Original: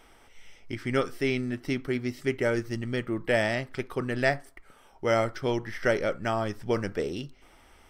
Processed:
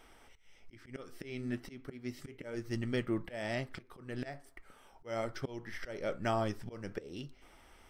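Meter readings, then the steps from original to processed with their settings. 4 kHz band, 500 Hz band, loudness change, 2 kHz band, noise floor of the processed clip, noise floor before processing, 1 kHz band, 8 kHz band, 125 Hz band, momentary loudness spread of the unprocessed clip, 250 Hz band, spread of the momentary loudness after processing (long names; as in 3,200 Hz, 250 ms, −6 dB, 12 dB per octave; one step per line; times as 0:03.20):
−10.5 dB, −12.0 dB, −10.5 dB, −13.5 dB, −62 dBFS, −57 dBFS, −9.0 dB, −9.5 dB, −8.5 dB, 8 LU, −9.0 dB, 15 LU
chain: dynamic equaliser 1,600 Hz, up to −3 dB, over −39 dBFS, Q 1.3
volume swells 355 ms
flanger 1.1 Hz, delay 2.4 ms, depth 4 ms, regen −82%
level +1 dB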